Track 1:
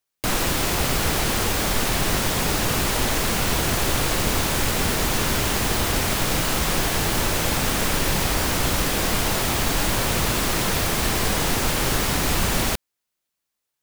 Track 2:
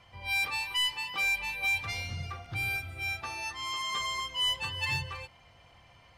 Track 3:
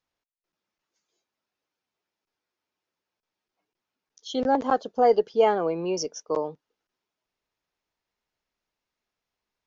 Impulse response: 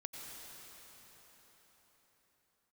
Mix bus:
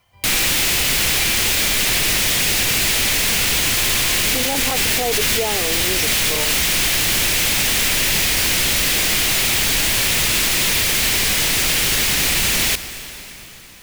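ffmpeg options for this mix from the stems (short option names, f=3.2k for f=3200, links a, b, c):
-filter_complex "[0:a]highshelf=f=1.6k:t=q:w=1.5:g=10,aeval=exprs='0.891*sin(PI/2*3.16*val(0)/0.891)':c=same,volume=-15dB,asplit=2[a][b];[b]volume=-5.5dB[c];[1:a]volume=-4dB[d];[2:a]volume=1.5dB[e];[3:a]atrim=start_sample=2205[f];[c][f]afir=irnorm=-1:irlink=0[g];[a][d][e][g]amix=inputs=4:normalize=0,alimiter=limit=-11.5dB:level=0:latency=1:release=16"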